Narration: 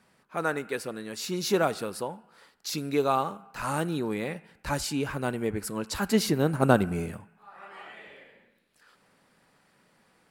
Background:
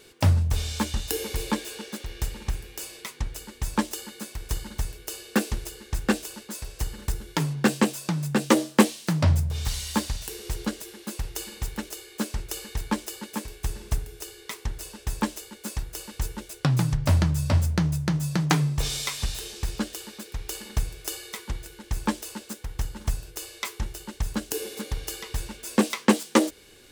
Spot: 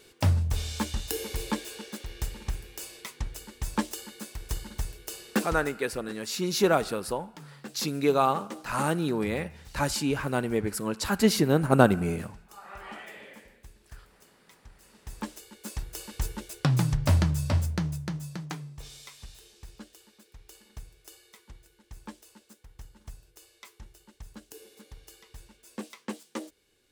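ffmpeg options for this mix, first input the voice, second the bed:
ffmpeg -i stem1.wav -i stem2.wav -filter_complex "[0:a]adelay=5100,volume=2dB[link_01];[1:a]volume=16.5dB,afade=type=out:start_time=5.42:duration=0.45:silence=0.125893,afade=type=in:start_time=14.8:duration=1.37:silence=0.1,afade=type=out:start_time=17.13:duration=1.46:silence=0.158489[link_02];[link_01][link_02]amix=inputs=2:normalize=0" out.wav

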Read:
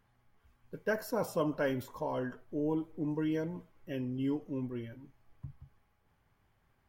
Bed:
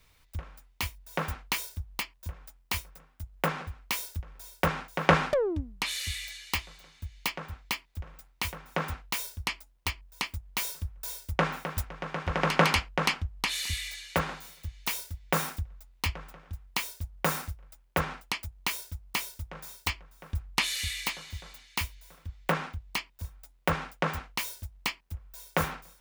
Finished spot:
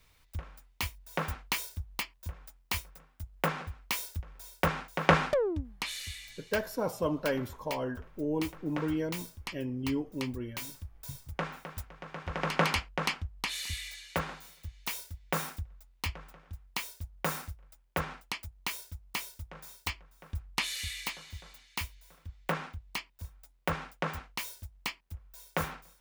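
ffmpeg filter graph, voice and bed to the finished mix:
ffmpeg -i stem1.wav -i stem2.wav -filter_complex "[0:a]adelay=5650,volume=1dB[link_01];[1:a]volume=2.5dB,afade=type=out:start_time=5.46:duration=0.76:silence=0.446684,afade=type=in:start_time=12.06:duration=0.57:silence=0.630957[link_02];[link_01][link_02]amix=inputs=2:normalize=0" out.wav

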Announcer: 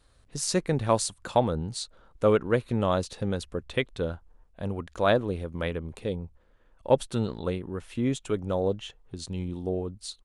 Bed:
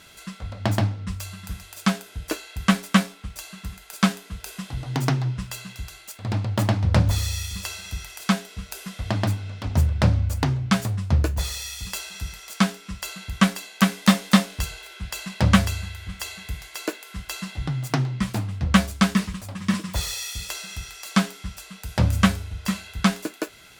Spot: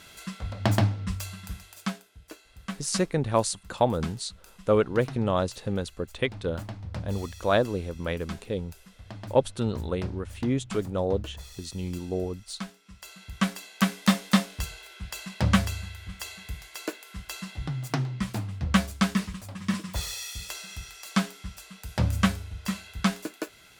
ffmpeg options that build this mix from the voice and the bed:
ffmpeg -i stem1.wav -i stem2.wav -filter_complex "[0:a]adelay=2450,volume=0dB[link_01];[1:a]volume=11.5dB,afade=type=out:start_time=1.13:duration=0.97:silence=0.149624,afade=type=in:start_time=12.84:duration=0.89:silence=0.251189[link_02];[link_01][link_02]amix=inputs=2:normalize=0" out.wav

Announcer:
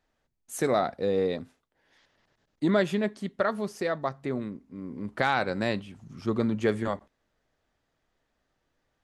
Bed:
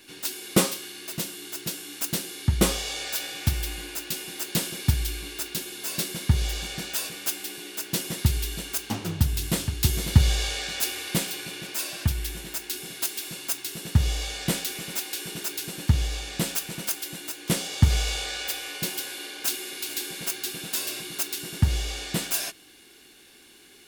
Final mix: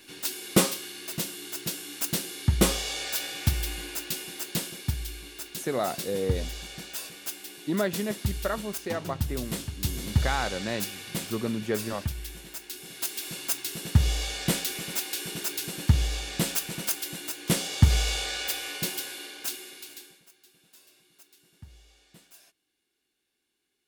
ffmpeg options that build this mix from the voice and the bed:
ffmpeg -i stem1.wav -i stem2.wav -filter_complex "[0:a]adelay=5050,volume=-3.5dB[link_01];[1:a]volume=6.5dB,afade=type=out:start_time=4:duration=0.9:silence=0.473151,afade=type=in:start_time=12.78:duration=0.58:silence=0.446684,afade=type=out:start_time=18.71:duration=1.52:silence=0.0446684[link_02];[link_01][link_02]amix=inputs=2:normalize=0" out.wav

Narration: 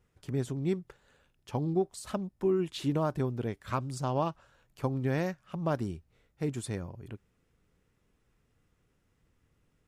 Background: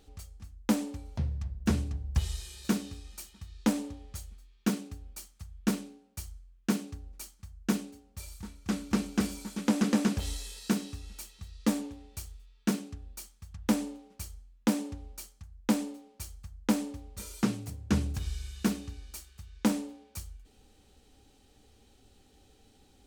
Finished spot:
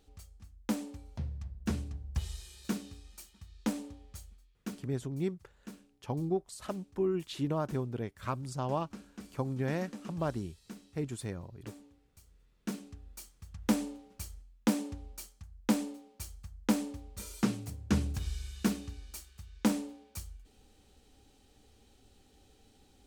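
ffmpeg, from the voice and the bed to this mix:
ffmpeg -i stem1.wav -i stem2.wav -filter_complex "[0:a]adelay=4550,volume=-3dB[link_01];[1:a]volume=11.5dB,afade=type=out:start_time=4.26:duration=0.67:silence=0.223872,afade=type=in:start_time=12.24:duration=1.33:silence=0.133352[link_02];[link_01][link_02]amix=inputs=2:normalize=0" out.wav

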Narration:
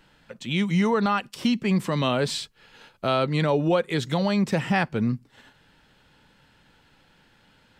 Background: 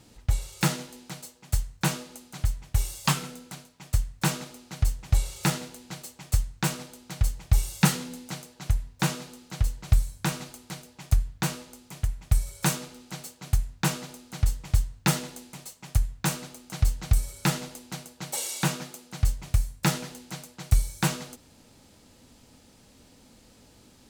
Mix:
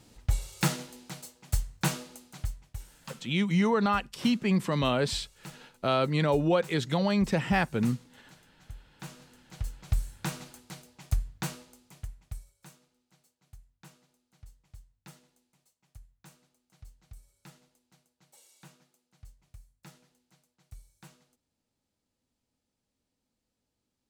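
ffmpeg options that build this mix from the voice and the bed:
ffmpeg -i stem1.wav -i stem2.wav -filter_complex "[0:a]adelay=2800,volume=-3dB[link_01];[1:a]volume=12dB,afade=type=out:start_time=2.04:duration=0.8:silence=0.125893,afade=type=in:start_time=8.96:duration=1.18:silence=0.188365,afade=type=out:start_time=11.37:duration=1.18:silence=0.0794328[link_02];[link_01][link_02]amix=inputs=2:normalize=0" out.wav

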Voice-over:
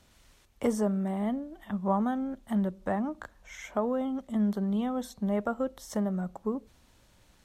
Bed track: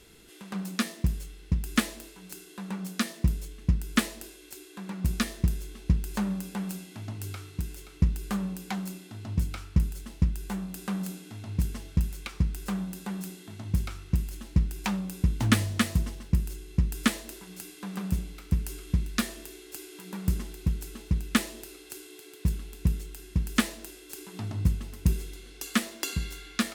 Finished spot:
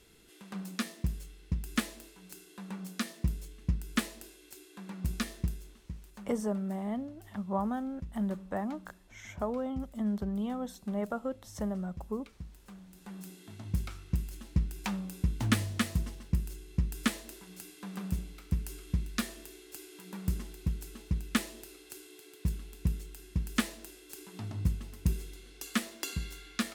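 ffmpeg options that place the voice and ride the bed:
ffmpeg -i stem1.wav -i stem2.wav -filter_complex "[0:a]adelay=5650,volume=-4.5dB[link_01];[1:a]volume=8dB,afade=type=out:start_time=5.35:duration=0.56:silence=0.223872,afade=type=in:start_time=12.87:duration=0.62:silence=0.199526[link_02];[link_01][link_02]amix=inputs=2:normalize=0" out.wav

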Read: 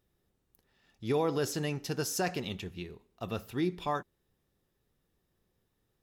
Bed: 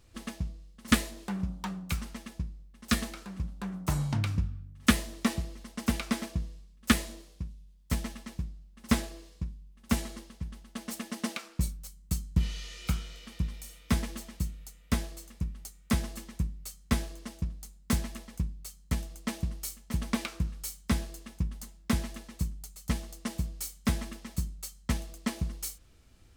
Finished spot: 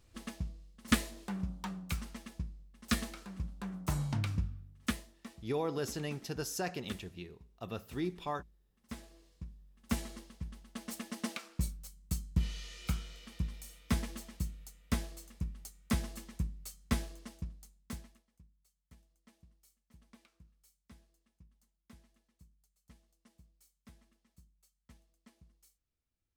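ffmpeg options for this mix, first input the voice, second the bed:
ffmpeg -i stem1.wav -i stem2.wav -filter_complex "[0:a]adelay=4400,volume=-5dB[link_01];[1:a]volume=12.5dB,afade=type=out:start_time=4.45:duration=0.68:silence=0.141254,afade=type=in:start_time=8.87:duration=1.32:silence=0.141254,afade=type=out:start_time=16.96:duration=1.27:silence=0.0530884[link_02];[link_01][link_02]amix=inputs=2:normalize=0" out.wav

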